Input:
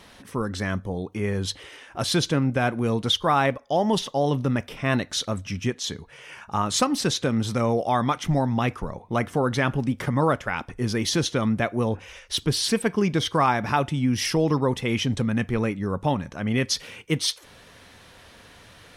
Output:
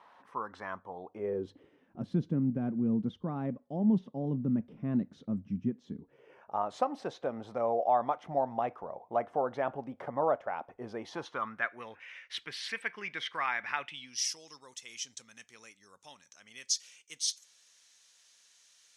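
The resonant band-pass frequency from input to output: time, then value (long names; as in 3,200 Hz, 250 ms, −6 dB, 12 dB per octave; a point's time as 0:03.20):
resonant band-pass, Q 3
0:00.94 970 Hz
0:01.72 210 Hz
0:05.90 210 Hz
0:06.59 690 Hz
0:10.99 690 Hz
0:11.84 2,000 Hz
0:13.81 2,000 Hz
0:14.25 6,600 Hz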